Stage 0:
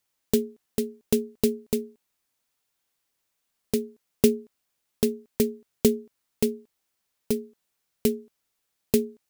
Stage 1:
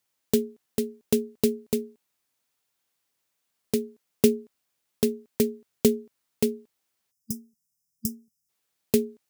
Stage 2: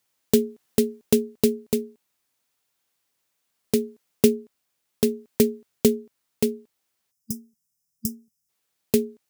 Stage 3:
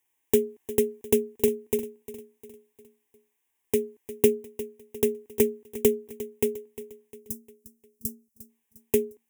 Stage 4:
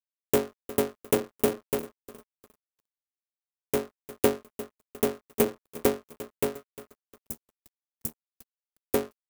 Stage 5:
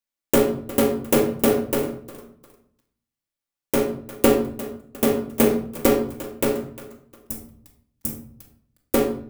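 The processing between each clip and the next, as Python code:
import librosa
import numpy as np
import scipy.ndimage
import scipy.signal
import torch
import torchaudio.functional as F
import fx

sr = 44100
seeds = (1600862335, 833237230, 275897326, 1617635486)

y1 = fx.spec_box(x, sr, start_s=7.11, length_s=1.38, low_hz=230.0, high_hz=4900.0, gain_db=-26)
y1 = scipy.signal.sosfilt(scipy.signal.butter(2, 69.0, 'highpass', fs=sr, output='sos'), y1)
y2 = fx.rider(y1, sr, range_db=3, speed_s=0.5)
y2 = y2 * 10.0 ** (4.5 / 20.0)
y3 = fx.fixed_phaser(y2, sr, hz=900.0, stages=8)
y3 = fx.echo_feedback(y3, sr, ms=353, feedback_pct=47, wet_db=-15)
y4 = fx.cycle_switch(y3, sr, every=3, mode='muted')
y4 = np.sign(y4) * np.maximum(np.abs(y4) - 10.0 ** (-44.0 / 20.0), 0.0)
y5 = fx.room_shoebox(y4, sr, seeds[0], volume_m3=930.0, walls='furnished', distance_m=2.4)
y5 = y5 * 10.0 ** (4.5 / 20.0)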